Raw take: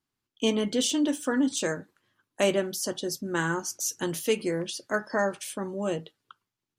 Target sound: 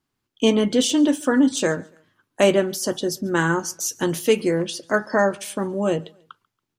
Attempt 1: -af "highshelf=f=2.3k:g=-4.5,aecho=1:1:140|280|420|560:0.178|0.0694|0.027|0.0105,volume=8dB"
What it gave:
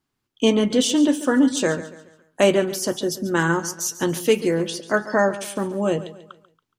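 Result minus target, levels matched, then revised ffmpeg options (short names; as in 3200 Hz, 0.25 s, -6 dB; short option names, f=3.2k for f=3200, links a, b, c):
echo-to-direct +11.5 dB
-af "highshelf=f=2.3k:g=-4.5,aecho=1:1:140|280:0.0473|0.0185,volume=8dB"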